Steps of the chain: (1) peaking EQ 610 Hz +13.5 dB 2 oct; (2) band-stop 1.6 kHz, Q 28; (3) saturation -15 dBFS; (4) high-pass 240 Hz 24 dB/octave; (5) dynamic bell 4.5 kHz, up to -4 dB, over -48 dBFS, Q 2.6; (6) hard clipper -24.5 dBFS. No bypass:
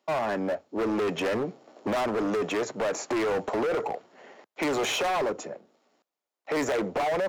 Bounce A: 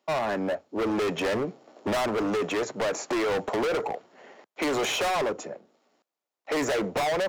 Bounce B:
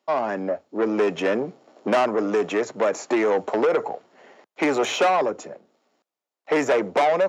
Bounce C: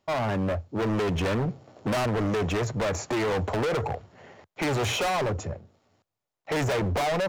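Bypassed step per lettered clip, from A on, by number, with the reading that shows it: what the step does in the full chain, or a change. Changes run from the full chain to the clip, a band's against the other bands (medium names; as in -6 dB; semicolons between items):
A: 3, distortion -8 dB; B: 6, distortion -6 dB; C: 4, 125 Hz band +13.0 dB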